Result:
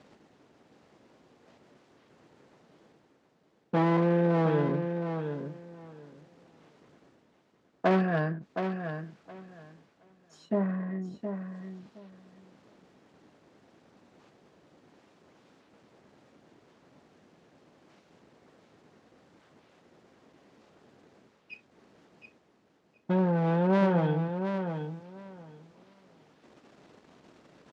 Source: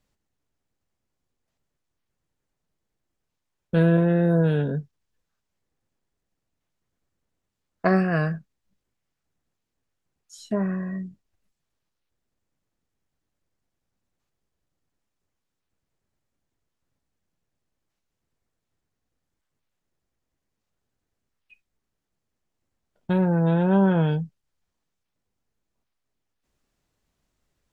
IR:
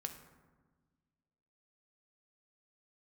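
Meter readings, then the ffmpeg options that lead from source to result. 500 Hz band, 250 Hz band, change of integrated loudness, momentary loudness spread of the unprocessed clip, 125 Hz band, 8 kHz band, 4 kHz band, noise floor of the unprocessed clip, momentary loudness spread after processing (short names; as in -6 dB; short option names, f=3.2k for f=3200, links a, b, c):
-2.5 dB, -5.0 dB, -6.5 dB, 14 LU, -6.0 dB, n/a, -2.5 dB, -82 dBFS, 22 LU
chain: -af "aeval=exprs='if(lt(val(0),0),0.447*val(0),val(0))':c=same,tiltshelf=f=970:g=5.5,areverse,acompressor=mode=upward:threshold=-28dB:ratio=2.5,areverse,aeval=exprs='0.188*(abs(mod(val(0)/0.188+3,4)-2)-1)':c=same,highpass=250,lowpass=4.6k,aecho=1:1:718|1436|2154:0.422|0.0717|0.0122"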